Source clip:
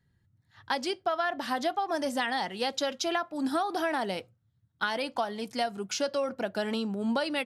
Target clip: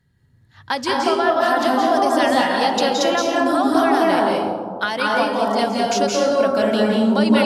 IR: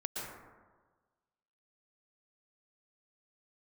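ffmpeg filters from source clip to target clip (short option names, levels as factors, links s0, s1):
-filter_complex "[1:a]atrim=start_sample=2205,asetrate=29988,aresample=44100[s0];[0:a][s0]afir=irnorm=-1:irlink=0,volume=2.51"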